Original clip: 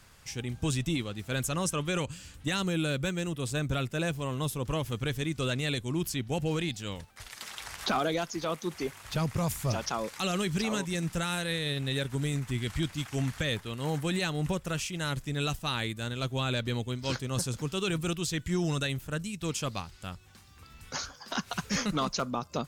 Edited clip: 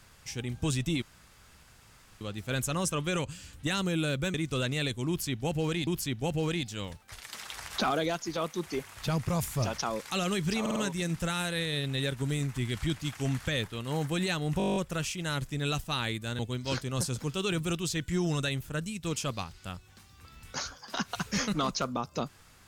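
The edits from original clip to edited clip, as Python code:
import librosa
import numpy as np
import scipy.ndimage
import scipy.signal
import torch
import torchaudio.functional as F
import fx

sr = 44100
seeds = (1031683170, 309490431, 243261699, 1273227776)

y = fx.edit(x, sr, fx.insert_room_tone(at_s=1.02, length_s=1.19),
    fx.cut(start_s=3.15, length_s=2.06),
    fx.repeat(start_s=5.95, length_s=0.79, count=2),
    fx.stutter(start_s=10.69, slice_s=0.05, count=4),
    fx.stutter(start_s=14.51, slice_s=0.02, count=10),
    fx.cut(start_s=16.14, length_s=0.63), tone=tone)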